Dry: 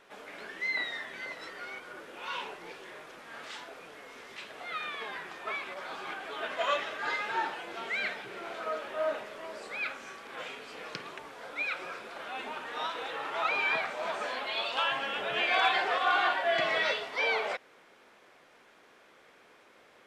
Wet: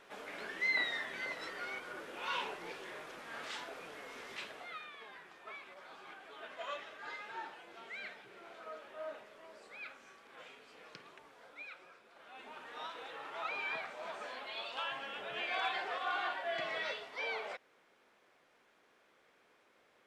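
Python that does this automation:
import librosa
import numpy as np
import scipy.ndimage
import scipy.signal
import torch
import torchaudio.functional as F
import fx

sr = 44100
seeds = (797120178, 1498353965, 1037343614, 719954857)

y = fx.gain(x, sr, db=fx.line((4.43, -0.5), (4.87, -13.0), (11.39, -13.0), (12.02, -19.5), (12.62, -10.0)))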